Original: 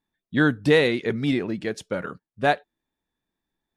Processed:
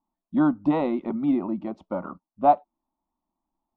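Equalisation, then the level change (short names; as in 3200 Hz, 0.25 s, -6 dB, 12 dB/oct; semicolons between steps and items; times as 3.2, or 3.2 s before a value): synth low-pass 1100 Hz, resonance Q 2.2; fixed phaser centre 450 Hz, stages 6; +1.5 dB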